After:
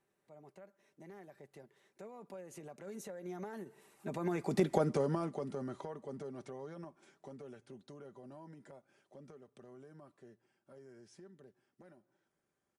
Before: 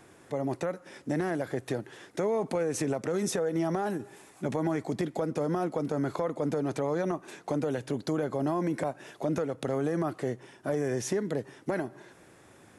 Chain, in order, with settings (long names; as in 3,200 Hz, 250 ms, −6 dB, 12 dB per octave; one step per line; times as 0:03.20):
source passing by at 0:04.74, 29 m/s, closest 5.9 metres
comb filter 5.1 ms, depth 40%
level +1 dB